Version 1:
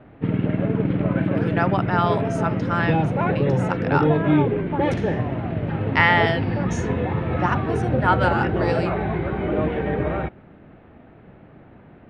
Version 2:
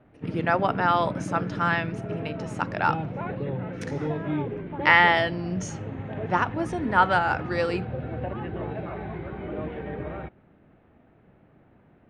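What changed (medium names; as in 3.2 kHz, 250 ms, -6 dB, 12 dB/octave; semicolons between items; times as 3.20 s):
speech: entry -1.10 s; background -10.5 dB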